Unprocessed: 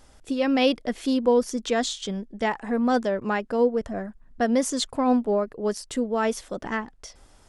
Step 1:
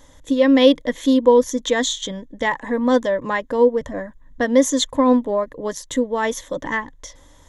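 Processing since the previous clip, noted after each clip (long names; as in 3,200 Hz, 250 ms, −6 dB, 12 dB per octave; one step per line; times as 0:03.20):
EQ curve with evenly spaced ripples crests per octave 1.1, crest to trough 12 dB
level +3.5 dB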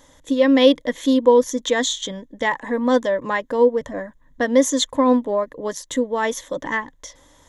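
low-shelf EQ 110 Hz −9 dB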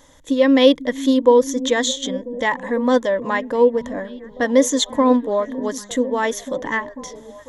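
echo through a band-pass that steps 496 ms, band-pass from 190 Hz, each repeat 0.7 octaves, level −10.5 dB
level +1 dB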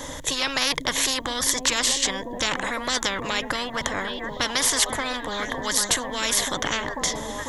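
every bin compressed towards the loudest bin 10 to 1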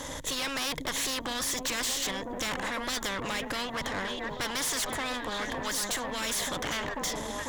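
tube saturation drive 28 dB, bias 0.6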